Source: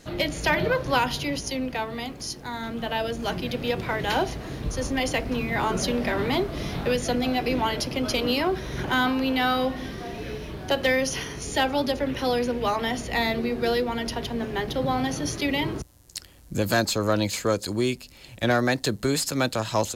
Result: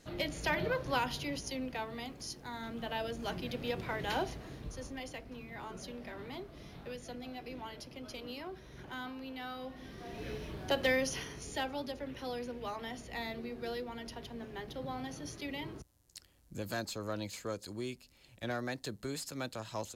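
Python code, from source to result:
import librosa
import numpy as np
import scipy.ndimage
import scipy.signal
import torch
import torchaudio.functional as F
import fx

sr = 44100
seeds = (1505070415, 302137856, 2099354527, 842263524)

y = fx.gain(x, sr, db=fx.line((4.26, -10.0), (5.21, -20.0), (9.59, -20.0), (10.27, -7.5), (10.94, -7.5), (11.88, -15.5)))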